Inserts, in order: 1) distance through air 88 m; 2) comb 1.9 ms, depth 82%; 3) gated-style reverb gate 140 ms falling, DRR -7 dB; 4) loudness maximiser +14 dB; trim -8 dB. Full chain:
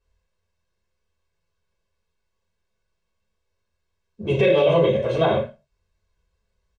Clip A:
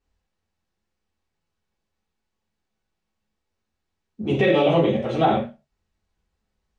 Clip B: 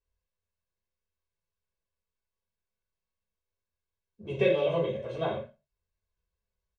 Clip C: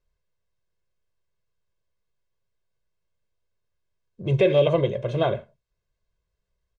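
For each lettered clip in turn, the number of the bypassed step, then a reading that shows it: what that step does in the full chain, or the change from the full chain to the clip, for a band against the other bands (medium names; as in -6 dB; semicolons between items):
2, 250 Hz band +4.5 dB; 4, crest factor change +7.0 dB; 3, crest factor change +3.0 dB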